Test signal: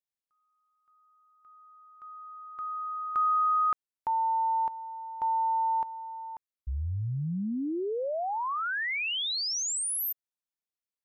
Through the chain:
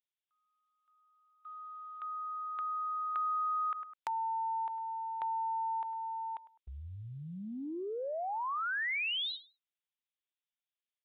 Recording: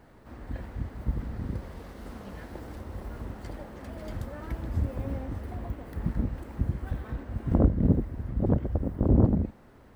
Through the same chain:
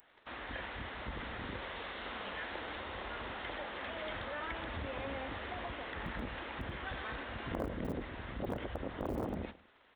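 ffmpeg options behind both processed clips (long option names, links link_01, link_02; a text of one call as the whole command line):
ffmpeg -i in.wav -filter_complex "[0:a]aresample=8000,aresample=44100,asplit=2[link_01][link_02];[link_02]volume=16dB,asoftclip=hard,volume=-16dB,volume=-9dB[link_03];[link_01][link_03]amix=inputs=2:normalize=0,crystalizer=i=6.5:c=0,acrossover=split=2800[link_04][link_05];[link_05]acompressor=threshold=-56dB:ratio=4:attack=1:release=60[link_06];[link_04][link_06]amix=inputs=2:normalize=0,aemphasis=mode=production:type=bsi,agate=range=-14dB:threshold=-54dB:ratio=16:release=28:detection=peak,equalizer=frequency=160:width_type=o:width=2.5:gain=-9,asplit=2[link_07][link_08];[link_08]adelay=103,lowpass=frequency=2400:poles=1,volume=-21dB,asplit=2[link_09][link_10];[link_10]adelay=103,lowpass=frequency=2400:poles=1,volume=0.32[link_11];[link_07][link_09][link_11]amix=inputs=3:normalize=0,acompressor=threshold=-43dB:ratio=3:attack=22:release=21:knee=6:detection=rms,volume=2dB" out.wav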